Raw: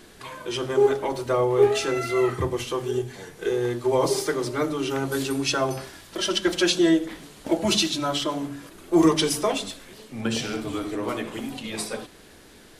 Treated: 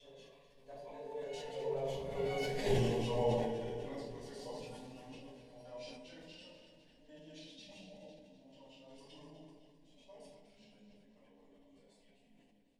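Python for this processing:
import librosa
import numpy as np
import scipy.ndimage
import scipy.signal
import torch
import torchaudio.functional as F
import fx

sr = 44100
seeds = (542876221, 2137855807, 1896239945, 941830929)

p1 = fx.block_reorder(x, sr, ms=111.0, group=6)
p2 = fx.doppler_pass(p1, sr, speed_mps=27, closest_m=1.4, pass_at_s=2.69)
p3 = fx.lowpass(p2, sr, hz=2600.0, slope=6)
p4 = fx.peak_eq(p3, sr, hz=230.0, db=-3.0, octaves=1.9)
p5 = fx.hum_notches(p4, sr, base_hz=50, count=6)
p6 = 10.0 ** (-34.5 / 20.0) * (np.abs((p5 / 10.0 ** (-34.5 / 20.0) + 3.0) % 4.0 - 2.0) - 1.0)
p7 = p5 + F.gain(torch.from_numpy(p6), -8.5).numpy()
p8 = fx.fixed_phaser(p7, sr, hz=350.0, stages=6)
p9 = p8 + fx.echo_split(p8, sr, split_hz=350.0, low_ms=477, high_ms=252, feedback_pct=52, wet_db=-11.0, dry=0)
p10 = fx.room_shoebox(p9, sr, seeds[0], volume_m3=160.0, walls='mixed', distance_m=3.0)
y = fx.sustainer(p10, sr, db_per_s=36.0)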